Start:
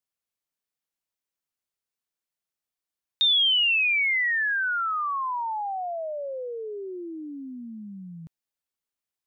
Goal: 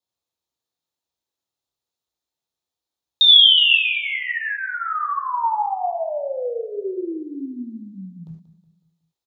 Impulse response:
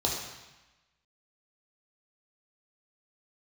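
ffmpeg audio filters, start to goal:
-filter_complex "[0:a]asettb=1/sr,asplit=3[a][b][c];[a]atrim=end=3.284[d];[b]atrim=start=3.28:end=3.77,asetpts=PTS-STARTPTS,afade=t=in:d=0.004:c=qsin,afade=t=out:st=0.486:d=0.004:c=qsin,equalizer=f=1.9k:t=o:w=2.3:g=7.5[e];[c]atrim=start=3.766[f];[d][e]acrossfade=d=0.004:c1=hsin:c2=qsin[g];[g][f]acrossfade=d=0.004:c1=qsin:c2=hsin,aecho=1:1:184|368|552|736:0.178|0.0836|0.0393|0.0185[h];[1:a]atrim=start_sample=2205,afade=t=out:st=0.17:d=0.01,atrim=end_sample=7938[i];[h][i]afir=irnorm=-1:irlink=0,volume=-5dB"

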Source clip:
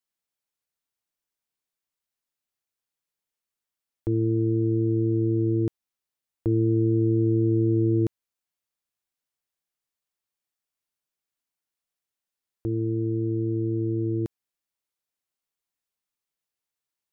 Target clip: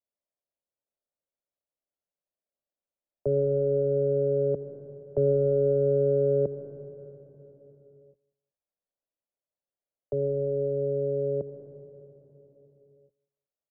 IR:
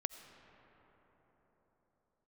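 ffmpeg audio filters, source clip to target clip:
-filter_complex "[0:a]equalizer=f=430:w=0.58:g=-10,asetrate=55125,aresample=44100,lowpass=f=590:t=q:w=4.9,acrossover=split=100|160|250[a][b][c][d];[d]acontrast=87[e];[a][b][c][e]amix=inputs=4:normalize=0,aecho=1:1:188|376:0.0708|0.0198[f];[1:a]atrim=start_sample=2205,asetrate=57330,aresample=44100[g];[f][g]afir=irnorm=-1:irlink=0"

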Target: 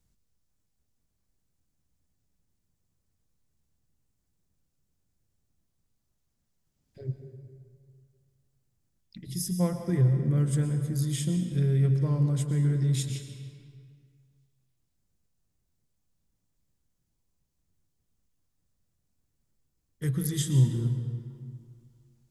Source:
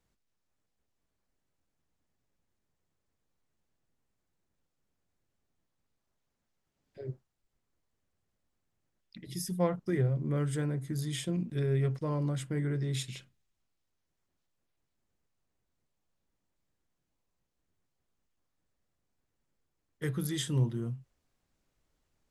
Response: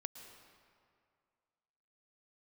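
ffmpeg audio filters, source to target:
-filter_complex "[0:a]bass=f=250:g=12,treble=f=4k:g=10[a];[1:a]atrim=start_sample=2205[b];[a][b]afir=irnorm=-1:irlink=0"

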